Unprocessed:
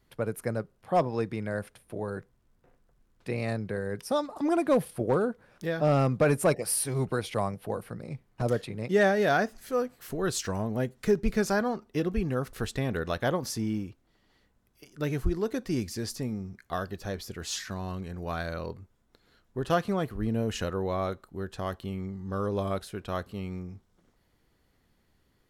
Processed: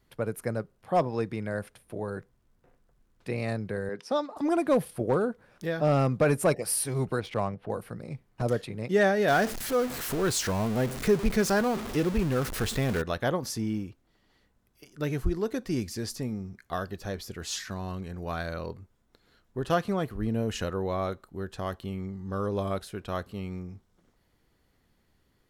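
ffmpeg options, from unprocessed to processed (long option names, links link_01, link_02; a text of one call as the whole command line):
ffmpeg -i in.wav -filter_complex "[0:a]asettb=1/sr,asplit=3[link_01][link_02][link_03];[link_01]atrim=end=3.894[link_04];[link_02]atrim=start=3.89:end=4.37,asetpts=PTS-STARTPTS,afade=type=in:duration=0.004:curve=qsin,afade=type=out:start_time=0.476:duration=0.004:curve=qsin,acrossover=split=170 6700:gain=0.0631 1 0.0891[link_05][link_06][link_07];[link_05][link_06][link_07]amix=inputs=3:normalize=0[link_08];[link_03]atrim=start=4.366[link_09];[link_04][link_08]acrossfade=duration=0.004:curve1=hsin:curve2=qsin[link_10];[link_10][link_09]acrossfade=duration=0.004:curve1=qsin:curve2=hsin,asettb=1/sr,asplit=3[link_11][link_12][link_13];[link_11]atrim=end=7.204[link_14];[link_12]atrim=start=7.2:end=7.7,asetpts=PTS-STARTPTS,afade=type=in:duration=0.004:curve=qsin,afade=type=out:start_time=0.496:duration=0.004:curve=qsin,adynamicsmooth=sensitivity=8:basefreq=2600[link_15];[link_13]atrim=start=7.696[link_16];[link_14][link_15]acrossfade=duration=0.004:curve1=hsin:curve2=qsin[link_17];[link_17][link_16]acrossfade=duration=0.004:curve1=qsin:curve2=hsin,asettb=1/sr,asplit=3[link_18][link_19][link_20];[link_18]atrim=end=9.284[link_21];[link_19]atrim=start=9.28:end=13.02,asetpts=PTS-STARTPTS,afade=type=in:duration=0.004:curve=qsin,afade=type=out:start_time=3.736:duration=0.004:curve=qsin,aeval=exprs='val(0)+0.5*0.0299*sgn(val(0))':channel_layout=same[link_22];[link_20]atrim=start=13.016[link_23];[link_21][link_22]acrossfade=duration=0.004:curve1=hsin:curve2=qsin[link_24];[link_24][link_23]acrossfade=duration=0.004:curve1=qsin:curve2=hsin" out.wav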